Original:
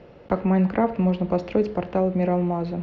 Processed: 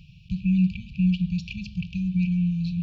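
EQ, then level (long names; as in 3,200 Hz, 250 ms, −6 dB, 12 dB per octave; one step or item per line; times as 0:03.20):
linear-phase brick-wall band-stop 190–2,300 Hz
+5.0 dB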